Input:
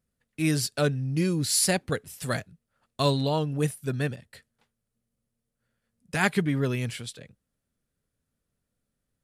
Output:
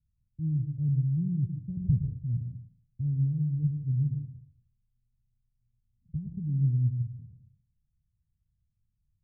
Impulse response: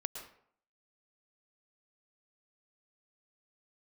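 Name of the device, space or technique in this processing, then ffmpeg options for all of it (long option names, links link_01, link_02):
club heard from the street: -filter_complex "[0:a]alimiter=limit=-15dB:level=0:latency=1:release=246,lowpass=frequency=130:width=0.5412,lowpass=frequency=130:width=1.3066[link_01];[1:a]atrim=start_sample=2205[link_02];[link_01][link_02]afir=irnorm=-1:irlink=0,asettb=1/sr,asplit=3[link_03][link_04][link_05];[link_03]atrim=end=1.774[link_06];[link_04]atrim=start=1.77:end=2.19,asetpts=PTS-STARTPTS,afade=type=in:duration=0.004:curve=qsin,afade=type=out:start_time=0.416:duration=0.004:curve=qsin,lowshelf=frequency=350:gain=8.5[link_07];[link_05]atrim=start=2.186[link_08];[link_06][link_07]acrossfade=duration=0.004:curve1=hsin:curve2=qsin[link_09];[link_09][link_08]acrossfade=duration=0.004:curve1=qsin:curve2=hsin,volume=8.5dB"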